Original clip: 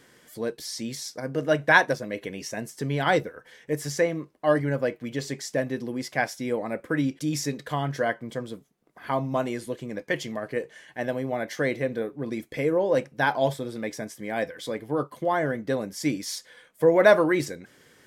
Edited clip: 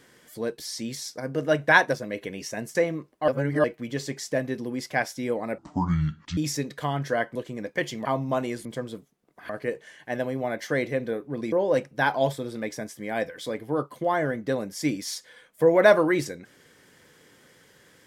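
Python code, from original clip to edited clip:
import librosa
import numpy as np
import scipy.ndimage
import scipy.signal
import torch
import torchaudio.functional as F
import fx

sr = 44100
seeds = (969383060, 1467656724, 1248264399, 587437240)

y = fx.edit(x, sr, fx.cut(start_s=2.75, length_s=1.22),
    fx.reverse_span(start_s=4.5, length_s=0.36),
    fx.speed_span(start_s=6.8, length_s=0.46, speed=0.58),
    fx.swap(start_s=8.24, length_s=0.84, other_s=9.68, other_length_s=0.7),
    fx.cut(start_s=12.41, length_s=0.32), tone=tone)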